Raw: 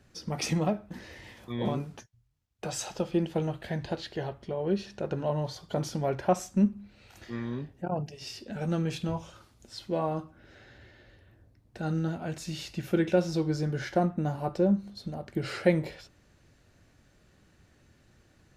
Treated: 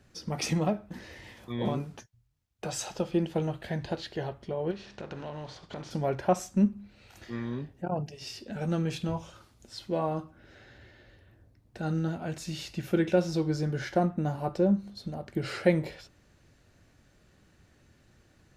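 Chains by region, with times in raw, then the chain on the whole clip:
4.70–5.90 s: spectral contrast reduction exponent 0.66 + compression 4:1, threshold -36 dBFS + distance through air 130 m
whole clip: none

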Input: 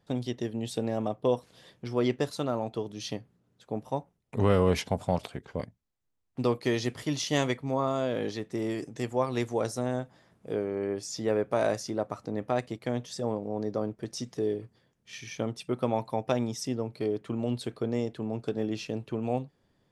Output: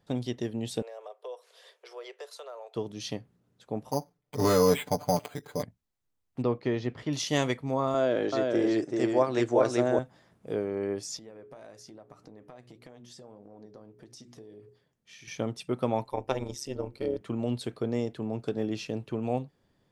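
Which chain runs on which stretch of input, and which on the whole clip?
0.82–2.76 s: steep high-pass 410 Hz 72 dB/octave + band-stop 810 Hz, Q 11 + compression 2:1, threshold -48 dBFS
3.91–5.63 s: bass shelf 140 Hz -8.5 dB + comb 6.8 ms, depth 93% + careless resampling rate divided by 8×, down filtered, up hold
6.42–7.13 s: tape spacing loss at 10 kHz 29 dB + tape noise reduction on one side only encoder only
7.94–9.99 s: cabinet simulation 130–8100 Hz, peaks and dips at 200 Hz -5 dB, 340 Hz +7 dB, 620 Hz +7 dB, 1.5 kHz +6 dB + delay 384 ms -3 dB
11.17–15.28 s: hum notches 60/120/180/240/300/360/420 Hz + compression 5:1, threshold -42 dBFS + flange 1.7 Hz, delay 1.8 ms, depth 7.2 ms, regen +71%
16.04–17.21 s: hum notches 50/100/150/200/250/300/350 Hz + comb 2.2 ms, depth 52% + AM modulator 140 Hz, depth 75%
whole clip: none

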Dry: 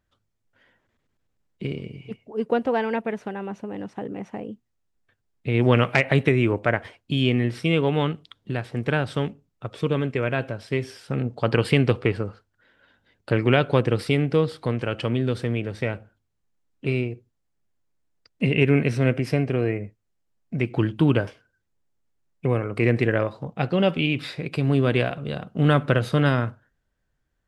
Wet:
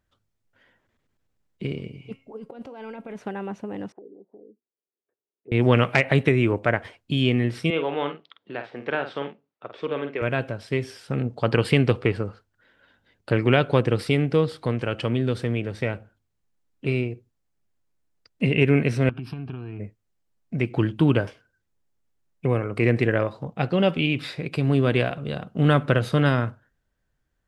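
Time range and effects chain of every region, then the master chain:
1.90–3.18 s: band-stop 1.8 kHz, Q 6.8 + compressor with a negative ratio -30 dBFS + feedback comb 270 Hz, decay 0.33 s
3.92–5.52 s: low-pass that closes with the level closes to 330 Hz, closed at -31 dBFS + ladder band-pass 450 Hz, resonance 60%
7.70–10.22 s: high-pass 390 Hz + distance through air 210 m + doubling 49 ms -8 dB
19.09–19.80 s: treble shelf 5.2 kHz -9.5 dB + compression 12:1, threshold -25 dBFS + static phaser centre 2 kHz, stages 6
whole clip: none

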